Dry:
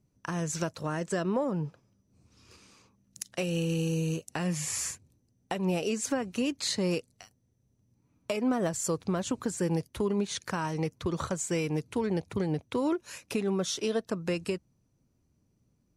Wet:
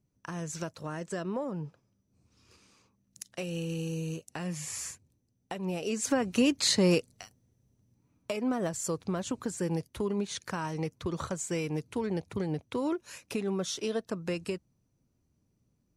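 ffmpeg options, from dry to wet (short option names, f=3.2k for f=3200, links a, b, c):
-af "volume=5dB,afade=t=in:st=5.79:d=0.56:silence=0.316228,afade=t=out:st=6.93:d=1.41:silence=0.421697"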